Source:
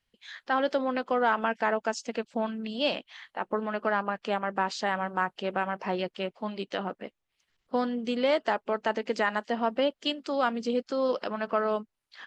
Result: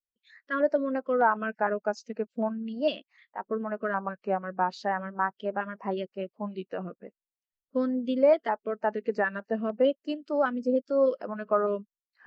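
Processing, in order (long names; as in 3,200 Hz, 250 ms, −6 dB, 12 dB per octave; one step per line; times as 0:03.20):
pitch vibrato 0.4 Hz 93 cents
auto-filter notch square 3.3 Hz 830–3,400 Hz
every bin expanded away from the loudest bin 1.5 to 1
level +2 dB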